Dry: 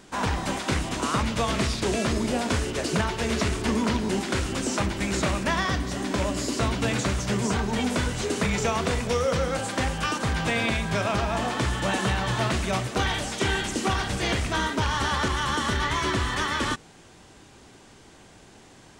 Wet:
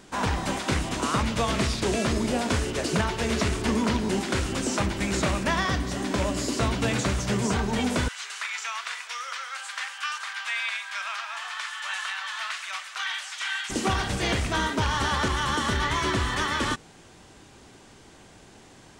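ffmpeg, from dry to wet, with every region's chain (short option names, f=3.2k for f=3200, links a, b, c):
-filter_complex "[0:a]asettb=1/sr,asplit=3[a][b][c];[a]atrim=end=8.084[d];[b]atrim=start=8.08:end=13.7,asetpts=PTS-STARTPTS,afade=t=in:d=0.004:c=qsin,afade=t=out:st=5.616:d=0.004:c=qsin,highpass=f=1.2k:w=0.5412,highpass=f=1.2k:w=1.3066,highshelf=f=7k:g=-9.5[e];[c]atrim=start=13.696[f];[d][e]acrossfade=d=0.004:c1=hsin:c2=qsin[g];[g][f]acrossfade=d=0.004:c1=qsin:c2=hsin"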